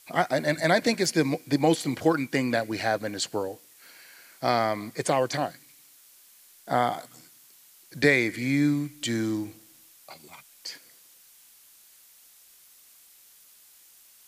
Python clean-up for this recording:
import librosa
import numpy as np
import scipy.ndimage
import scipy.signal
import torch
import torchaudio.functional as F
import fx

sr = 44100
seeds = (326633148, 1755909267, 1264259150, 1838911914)

y = fx.noise_reduce(x, sr, print_start_s=13.7, print_end_s=14.2, reduce_db=16.0)